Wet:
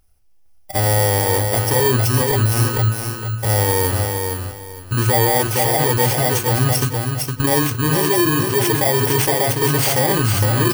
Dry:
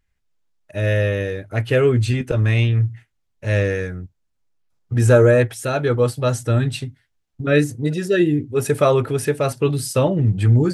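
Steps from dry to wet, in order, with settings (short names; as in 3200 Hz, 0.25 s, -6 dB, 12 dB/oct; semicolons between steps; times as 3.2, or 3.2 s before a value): FFT order left unsorted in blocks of 32 samples; bell 180 Hz -13 dB 0.39 oct; in parallel at +1 dB: negative-ratio compressor -27 dBFS, ratio -1; on the sum: bell 780 Hz +6.5 dB 0.3 oct; feedback echo 0.461 s, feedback 25%, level -5.5 dB; limiter -7.5 dBFS, peak gain reduction 7 dB; on a send at -13.5 dB: reverb RT60 0.65 s, pre-delay 4 ms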